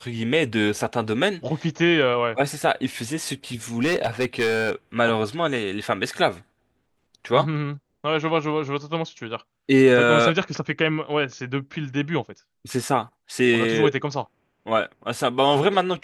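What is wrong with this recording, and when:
3.78–4.72 clipped -17 dBFS

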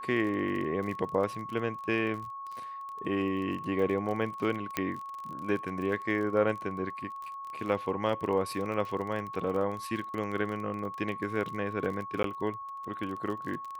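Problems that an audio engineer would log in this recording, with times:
crackle 30/s -36 dBFS
tone 1100 Hz -38 dBFS
4.77 pop -13 dBFS
12.23–12.24 gap 13 ms

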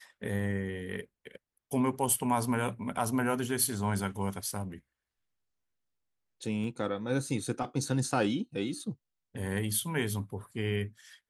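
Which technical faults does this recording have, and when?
6.64 gap 2.1 ms

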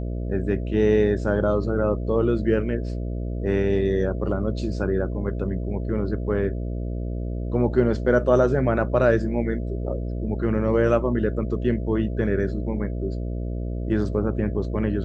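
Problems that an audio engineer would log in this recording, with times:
buzz 60 Hz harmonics 11 -28 dBFS

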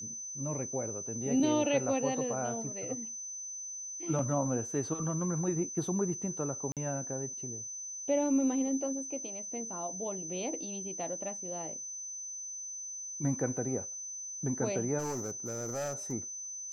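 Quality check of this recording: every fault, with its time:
tone 6100 Hz -39 dBFS
6.72–6.77 gap 47 ms
14.98–16.13 clipped -31.5 dBFS

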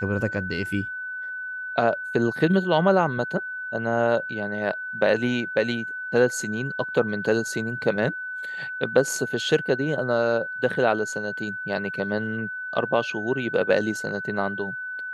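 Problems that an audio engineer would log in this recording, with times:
tone 1500 Hz -30 dBFS

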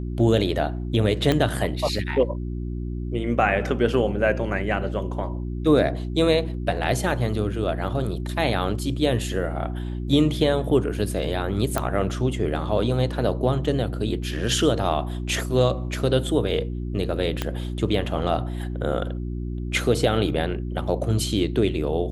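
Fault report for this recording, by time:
hum 60 Hz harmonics 6 -29 dBFS
1.32 pop -8 dBFS
11.78 pop -10 dBFS
17.42 pop -10 dBFS

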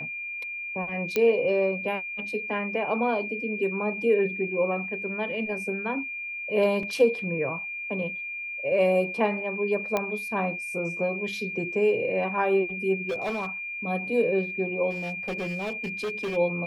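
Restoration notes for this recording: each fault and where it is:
tone 2400 Hz -32 dBFS
1.16 pop -11 dBFS
6.83 gap 3 ms
9.97 pop -12 dBFS
13.08–13.46 clipped -25 dBFS
14.9–16.37 clipped -27 dBFS

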